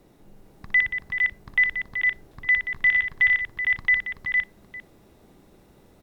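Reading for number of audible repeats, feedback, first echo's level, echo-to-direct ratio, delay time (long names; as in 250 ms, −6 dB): 6, repeats not evenly spaced, −8.0 dB, −0.5 dB, 60 ms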